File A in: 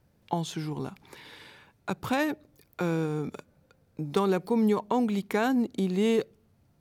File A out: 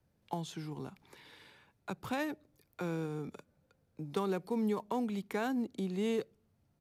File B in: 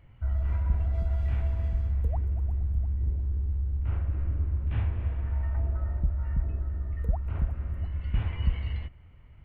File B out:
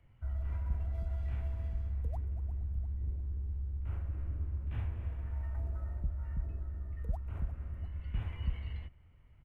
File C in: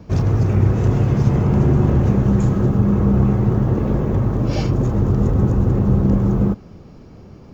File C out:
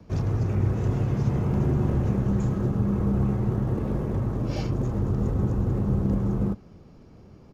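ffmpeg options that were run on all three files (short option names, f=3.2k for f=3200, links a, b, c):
-filter_complex "[0:a]acrossover=split=150|520|1600[a][b][c][d];[c]acrusher=bits=5:mode=log:mix=0:aa=0.000001[e];[a][b][e][d]amix=inputs=4:normalize=0,aresample=32000,aresample=44100,volume=-8.5dB"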